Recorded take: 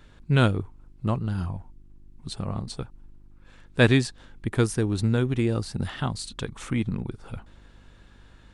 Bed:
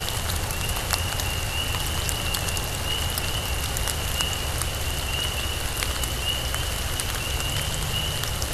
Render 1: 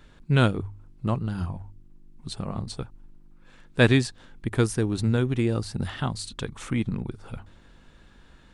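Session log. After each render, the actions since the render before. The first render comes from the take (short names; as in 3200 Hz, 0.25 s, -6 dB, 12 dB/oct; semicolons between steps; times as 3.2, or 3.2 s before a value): de-hum 50 Hz, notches 2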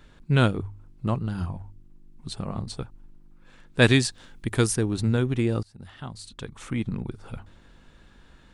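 3.82–4.76 high shelf 2900 Hz +8 dB; 5.63–7.11 fade in, from -23.5 dB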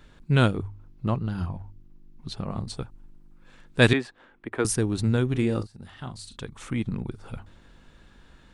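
0.68–2.5 bell 8400 Hz -11.5 dB 0.42 oct; 3.93–4.65 three-band isolator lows -18 dB, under 270 Hz, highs -24 dB, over 2400 Hz; 5.28–6.4 doubler 39 ms -10 dB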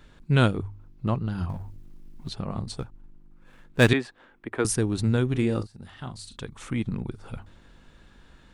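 1.49–2.29 G.711 law mismatch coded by mu; 2.79–3.89 median filter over 9 samples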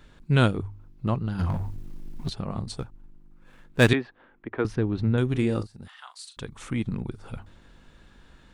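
1.39–2.3 sample leveller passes 2; 3.95–5.18 air absorption 300 m; 5.88–6.37 HPF 940 Hz 24 dB/oct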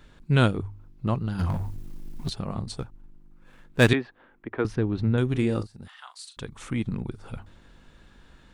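1.1–2.55 high shelf 5800 Hz +6 dB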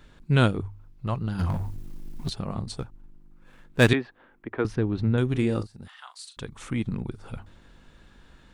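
0.68–1.19 bell 270 Hz -7.5 dB 1.5 oct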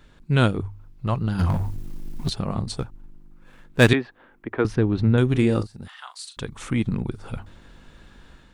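AGC gain up to 5 dB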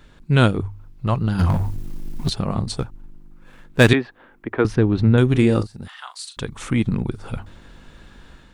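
gain +3.5 dB; limiter -2 dBFS, peak gain reduction 2.5 dB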